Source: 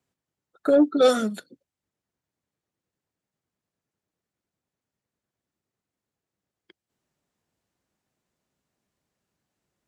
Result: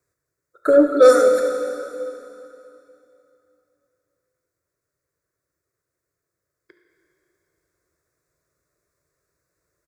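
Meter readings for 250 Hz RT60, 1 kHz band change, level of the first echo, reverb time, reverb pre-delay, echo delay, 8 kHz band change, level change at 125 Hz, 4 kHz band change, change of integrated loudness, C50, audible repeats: 2.9 s, +7.0 dB, -15.0 dB, 2.9 s, 7 ms, 71 ms, +7.0 dB, no reading, -2.0 dB, +5.0 dB, 4.5 dB, 1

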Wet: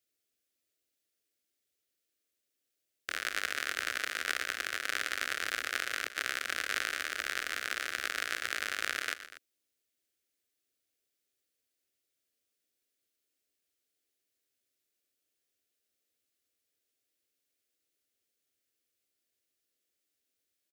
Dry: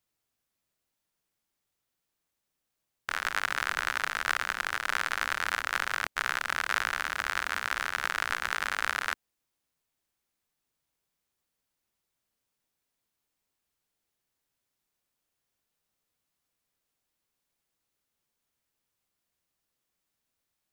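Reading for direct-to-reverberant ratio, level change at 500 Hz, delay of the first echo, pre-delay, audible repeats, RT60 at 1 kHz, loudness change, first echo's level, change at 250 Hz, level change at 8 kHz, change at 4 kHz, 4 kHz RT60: no reverb, -2.0 dB, 120 ms, no reverb, 2, no reverb, -3.5 dB, -14.0 dB, -2.5 dB, 0.0 dB, -0.5 dB, no reverb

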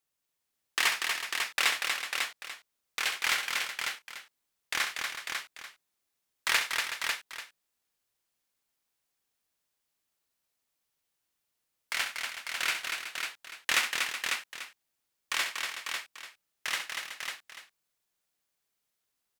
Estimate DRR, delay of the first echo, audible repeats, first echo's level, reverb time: no reverb, 66 ms, 5, -9.0 dB, no reverb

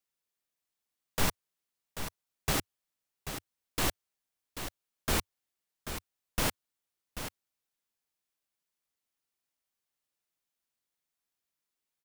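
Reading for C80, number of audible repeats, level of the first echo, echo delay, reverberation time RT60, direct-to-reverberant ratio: no reverb, 1, -9.5 dB, 787 ms, no reverb, no reverb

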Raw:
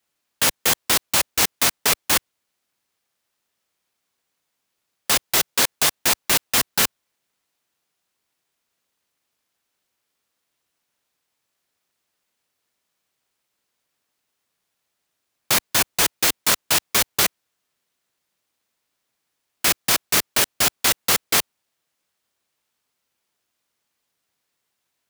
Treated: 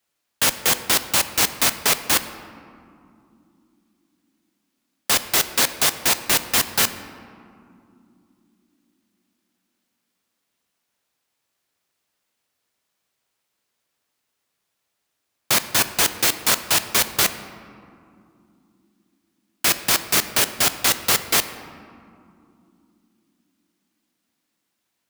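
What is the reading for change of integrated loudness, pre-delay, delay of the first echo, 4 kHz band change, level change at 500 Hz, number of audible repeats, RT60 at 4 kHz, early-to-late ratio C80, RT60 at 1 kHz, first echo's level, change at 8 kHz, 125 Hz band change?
0.0 dB, 3 ms, no echo, 0.0 dB, +0.5 dB, no echo, 1.1 s, 13.0 dB, 2.4 s, no echo, 0.0 dB, +0.5 dB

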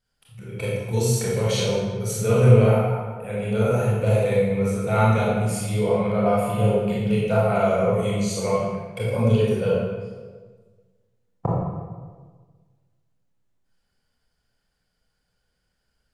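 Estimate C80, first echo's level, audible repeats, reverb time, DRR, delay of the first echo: 0.5 dB, no echo, no echo, 1.5 s, -6.5 dB, no echo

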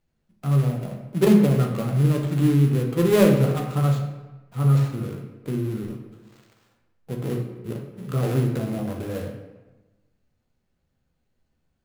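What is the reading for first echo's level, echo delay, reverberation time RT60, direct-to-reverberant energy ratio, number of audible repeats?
no echo, no echo, 1.1 s, 1.0 dB, no echo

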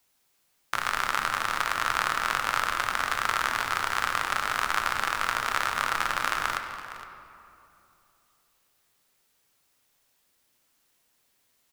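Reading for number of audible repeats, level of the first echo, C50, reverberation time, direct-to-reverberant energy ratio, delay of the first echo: 1, -14.5 dB, 6.5 dB, 2.7 s, 5.0 dB, 463 ms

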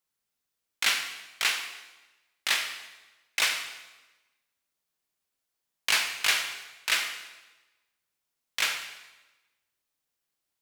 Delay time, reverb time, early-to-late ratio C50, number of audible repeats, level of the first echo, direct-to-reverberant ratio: no echo, 1.1 s, 7.0 dB, no echo, no echo, 5.0 dB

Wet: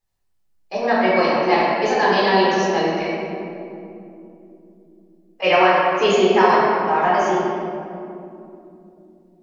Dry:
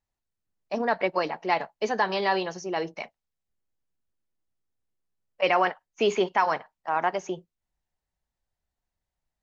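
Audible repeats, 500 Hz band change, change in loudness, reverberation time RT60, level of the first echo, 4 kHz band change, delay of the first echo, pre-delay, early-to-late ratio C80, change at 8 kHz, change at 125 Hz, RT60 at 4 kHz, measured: no echo, +10.5 dB, +9.5 dB, 3.0 s, no echo, +9.5 dB, no echo, 3 ms, -1.0 dB, no reading, +12.5 dB, 1.4 s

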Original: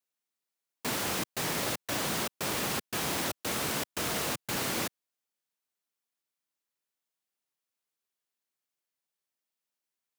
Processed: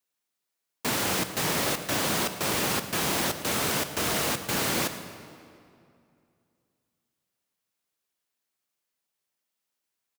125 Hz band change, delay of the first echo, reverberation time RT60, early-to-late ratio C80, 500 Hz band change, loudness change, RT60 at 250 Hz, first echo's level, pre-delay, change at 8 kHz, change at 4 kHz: +5.5 dB, 110 ms, 2.4 s, 10.5 dB, +5.0 dB, +5.0 dB, 2.7 s, -18.5 dB, 22 ms, +5.0 dB, +5.0 dB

